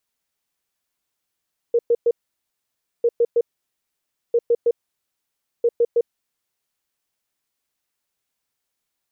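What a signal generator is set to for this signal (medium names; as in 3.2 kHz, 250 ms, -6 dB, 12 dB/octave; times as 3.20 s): beep pattern sine 471 Hz, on 0.05 s, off 0.11 s, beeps 3, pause 0.93 s, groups 4, -13 dBFS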